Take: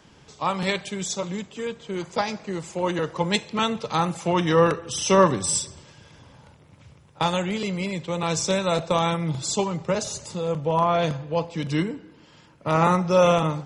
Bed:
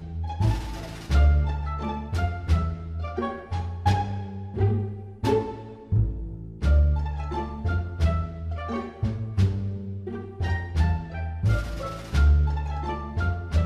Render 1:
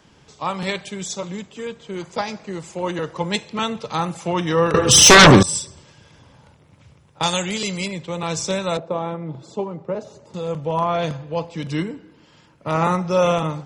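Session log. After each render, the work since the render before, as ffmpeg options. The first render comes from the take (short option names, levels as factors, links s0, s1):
-filter_complex "[0:a]asettb=1/sr,asplit=3[s0][s1][s2];[s0]atrim=end=4.744[s3];[s1]atrim=start=4.74:end=5.43,asetpts=PTS-STARTPTS,afade=t=in:d=0.004:c=qsin,afade=t=out:st=0.686:d=0.004:c=qsin,aeval=exprs='0.668*sin(PI/2*6.31*val(0)/0.668)':c=same[s4];[s2]atrim=start=5.426[s5];[s3][s4]acrossfade=d=0.004:c1=hsin:c2=qsin[s6];[s6][s5]acrossfade=d=0.004:c1=qsin:c2=hsin,asettb=1/sr,asplit=3[s7][s8][s9];[s7]atrim=end=7.234[s10];[s8]atrim=start=7.23:end=7.88,asetpts=PTS-STARTPTS,afade=t=in:d=0.004:c=qsin,afade=t=out:st=0.646:d=0.004:c=qsin,equalizer=f=7700:w=0.42:g=14[s11];[s9]atrim=start=7.876[s12];[s10][s11]acrossfade=d=0.004:c1=hsin:c2=qsin[s13];[s13][s12]acrossfade=d=0.004:c1=qsin:c2=hsin,asettb=1/sr,asplit=3[s14][s15][s16];[s14]atrim=end=8.774[s17];[s15]atrim=start=8.77:end=10.34,asetpts=PTS-STARTPTS,afade=t=in:d=0.004:c=qsin,afade=t=out:st=1.566:d=0.004:c=qsin,bandpass=f=400:t=q:w=0.71[s18];[s16]atrim=start=10.336[s19];[s17][s18]acrossfade=d=0.004:c1=hsin:c2=qsin[s20];[s20][s19]acrossfade=d=0.004:c1=qsin:c2=hsin"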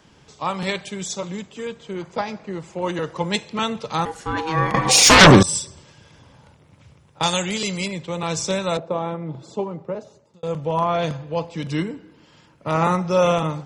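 -filter_complex "[0:a]asettb=1/sr,asplit=3[s0][s1][s2];[s0]atrim=end=1.934[s3];[s1]atrim=start=1.93:end=2.82,asetpts=PTS-STARTPTS,afade=t=in:d=0.004:c=qsin,afade=t=out:st=0.886:d=0.004:c=qsin,lowpass=f=2600:p=1[s4];[s2]atrim=start=2.816[s5];[s3][s4]acrossfade=d=0.004:c1=hsin:c2=qsin[s6];[s6][s5]acrossfade=d=0.004:c1=qsin:c2=hsin,asettb=1/sr,asplit=3[s7][s8][s9];[s7]atrim=end=4.054[s10];[s8]atrim=start=4.05:end=5.21,asetpts=PTS-STARTPTS,afade=t=in:d=0.004:c=qsin,afade=t=out:st=1.156:d=0.004:c=qsin,aeval=exprs='val(0)*sin(2*PI*640*n/s)':c=same[s11];[s9]atrim=start=5.206[s12];[s10][s11]acrossfade=d=0.004:c1=hsin:c2=qsin[s13];[s13][s12]acrossfade=d=0.004:c1=qsin:c2=hsin,asplit=2[s14][s15];[s14]atrim=end=10.43,asetpts=PTS-STARTPTS,afade=t=out:st=9.75:d=0.68[s16];[s15]atrim=start=10.43,asetpts=PTS-STARTPTS,afade=t=in:d=0.004:c=hsin[s17];[s16][s17]concat=n=2:v=0:a=1"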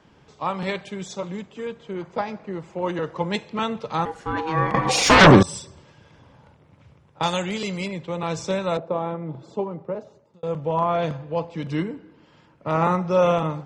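-af "lowpass=f=1900:p=1,lowshelf=f=200:g=-3"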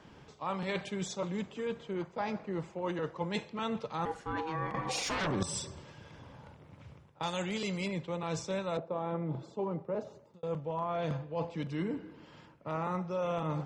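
-af "alimiter=limit=0.251:level=0:latency=1:release=292,areverse,acompressor=threshold=0.0251:ratio=6,areverse"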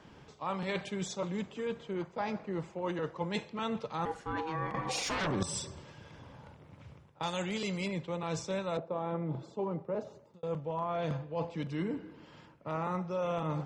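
-af anull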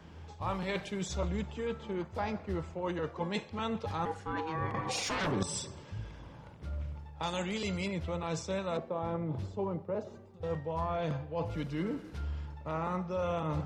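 -filter_complex "[1:a]volume=0.112[s0];[0:a][s0]amix=inputs=2:normalize=0"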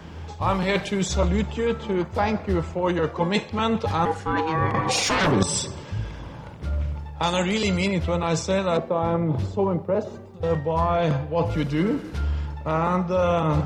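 -af "volume=3.98"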